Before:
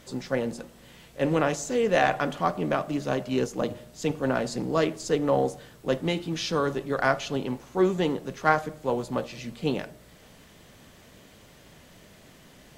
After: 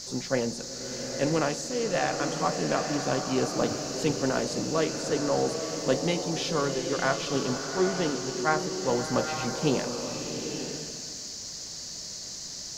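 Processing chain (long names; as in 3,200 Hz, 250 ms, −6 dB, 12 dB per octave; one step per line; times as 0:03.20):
speech leveller 0.5 s
noise in a band 4,200–7,000 Hz −38 dBFS
slow-attack reverb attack 910 ms, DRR 4.5 dB
level −2.5 dB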